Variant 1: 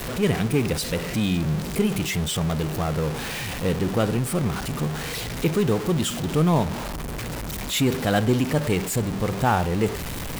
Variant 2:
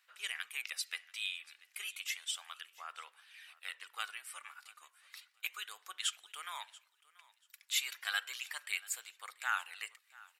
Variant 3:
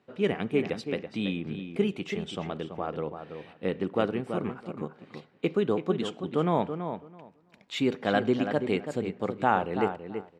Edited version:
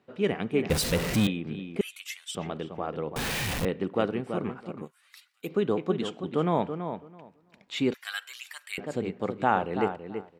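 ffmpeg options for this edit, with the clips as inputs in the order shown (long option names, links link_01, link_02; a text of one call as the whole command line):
ffmpeg -i take0.wav -i take1.wav -i take2.wav -filter_complex "[0:a]asplit=2[link_01][link_02];[1:a]asplit=3[link_03][link_04][link_05];[2:a]asplit=6[link_06][link_07][link_08][link_09][link_10][link_11];[link_06]atrim=end=0.702[link_12];[link_01]atrim=start=0.698:end=1.272[link_13];[link_07]atrim=start=1.268:end=1.812[link_14];[link_03]atrim=start=1.808:end=2.352[link_15];[link_08]atrim=start=2.348:end=3.162[link_16];[link_02]atrim=start=3.158:end=3.652[link_17];[link_09]atrim=start=3.648:end=4.92[link_18];[link_04]atrim=start=4.76:end=5.56[link_19];[link_10]atrim=start=5.4:end=7.942[link_20];[link_05]atrim=start=7.938:end=8.782[link_21];[link_11]atrim=start=8.778[link_22];[link_12][link_13]acrossfade=duration=0.004:curve1=hsin:curve2=hsin[link_23];[link_23][link_14]acrossfade=duration=0.004:curve1=hsin:curve2=hsin[link_24];[link_24][link_15]acrossfade=duration=0.004:curve1=hsin:curve2=hsin[link_25];[link_25][link_16]acrossfade=duration=0.004:curve1=hsin:curve2=hsin[link_26];[link_26][link_17]acrossfade=duration=0.004:curve1=hsin:curve2=hsin[link_27];[link_27][link_18]acrossfade=duration=0.004:curve1=hsin:curve2=hsin[link_28];[link_28][link_19]acrossfade=duration=0.16:curve1=tri:curve2=tri[link_29];[link_29][link_20]acrossfade=duration=0.16:curve1=tri:curve2=tri[link_30];[link_30][link_21]acrossfade=duration=0.004:curve1=hsin:curve2=hsin[link_31];[link_31][link_22]acrossfade=duration=0.004:curve1=hsin:curve2=hsin" out.wav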